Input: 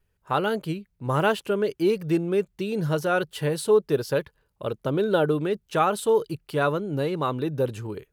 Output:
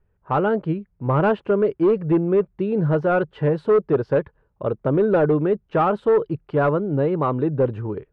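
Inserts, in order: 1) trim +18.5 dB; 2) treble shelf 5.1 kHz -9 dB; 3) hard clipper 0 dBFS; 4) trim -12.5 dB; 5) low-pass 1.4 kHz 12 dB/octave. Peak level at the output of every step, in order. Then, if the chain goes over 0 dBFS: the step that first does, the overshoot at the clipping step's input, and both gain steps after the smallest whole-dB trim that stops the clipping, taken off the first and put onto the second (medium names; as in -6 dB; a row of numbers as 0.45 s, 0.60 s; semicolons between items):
+9.5 dBFS, +9.0 dBFS, 0.0 dBFS, -12.5 dBFS, -12.0 dBFS; step 1, 9.0 dB; step 1 +9.5 dB, step 4 -3.5 dB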